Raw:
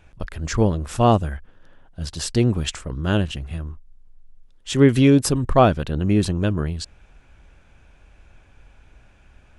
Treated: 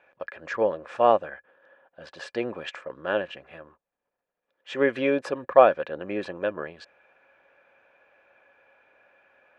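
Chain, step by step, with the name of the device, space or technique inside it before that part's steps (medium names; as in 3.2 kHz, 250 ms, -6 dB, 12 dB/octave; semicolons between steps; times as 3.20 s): tin-can telephone (band-pass 560–2000 Hz; small resonant body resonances 540/1700/2400 Hz, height 11 dB); trim -1 dB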